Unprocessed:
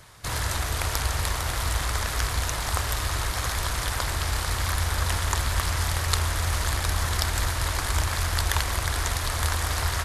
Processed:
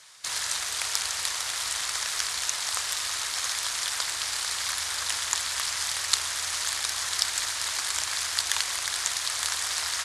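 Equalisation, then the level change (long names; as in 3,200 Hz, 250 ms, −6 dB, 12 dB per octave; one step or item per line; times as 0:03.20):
meter weighting curve ITU-R 468
−7.0 dB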